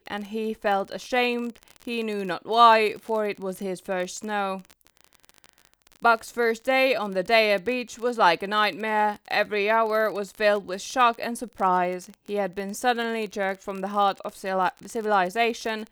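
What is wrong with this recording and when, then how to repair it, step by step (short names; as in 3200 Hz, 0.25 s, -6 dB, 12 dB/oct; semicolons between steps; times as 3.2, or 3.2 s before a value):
crackle 35/s -30 dBFS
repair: de-click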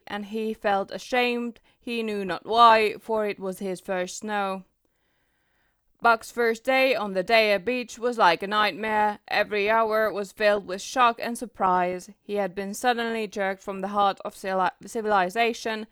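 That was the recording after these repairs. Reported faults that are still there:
none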